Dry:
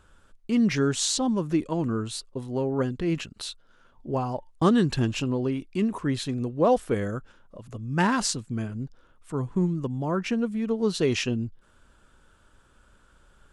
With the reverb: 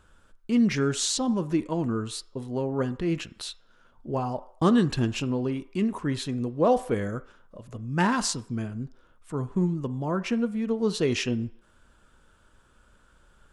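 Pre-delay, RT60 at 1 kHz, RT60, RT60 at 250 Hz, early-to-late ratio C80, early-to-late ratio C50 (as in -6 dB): 3 ms, 0.65 s, 0.60 s, 0.45 s, 20.0 dB, 17.0 dB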